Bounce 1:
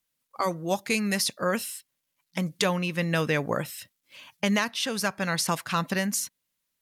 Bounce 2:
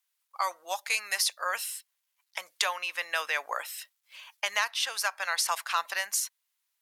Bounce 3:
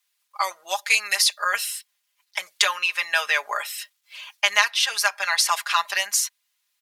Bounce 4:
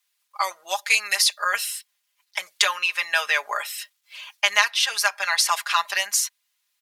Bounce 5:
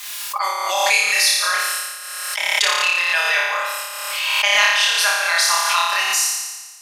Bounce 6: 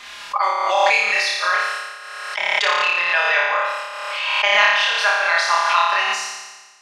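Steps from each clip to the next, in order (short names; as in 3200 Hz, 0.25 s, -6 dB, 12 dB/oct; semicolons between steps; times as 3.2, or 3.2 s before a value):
HPF 760 Hz 24 dB/oct
bell 3400 Hz +5.5 dB 2.9 oct; comb 4.9 ms, depth 84%; gain +1.5 dB
nothing audible
on a send: flutter echo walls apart 4.9 m, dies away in 1.3 s; on the sum: backwards sustainer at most 28 dB/s; gain -1 dB
tape spacing loss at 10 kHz 27 dB; gain +6 dB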